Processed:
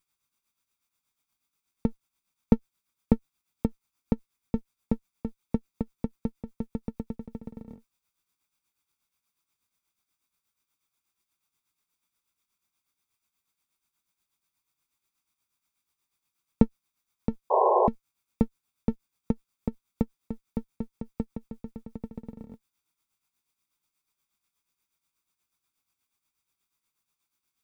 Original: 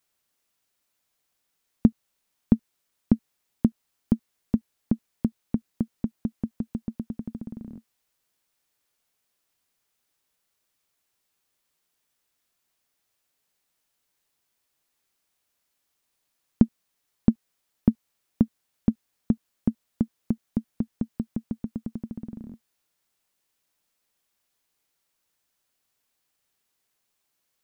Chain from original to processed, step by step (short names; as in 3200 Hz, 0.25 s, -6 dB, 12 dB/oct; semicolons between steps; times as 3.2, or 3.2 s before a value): minimum comb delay 0.85 ms; tremolo 8.3 Hz, depth 64%; painted sound noise, 17.5–17.88, 360–1100 Hz -21 dBFS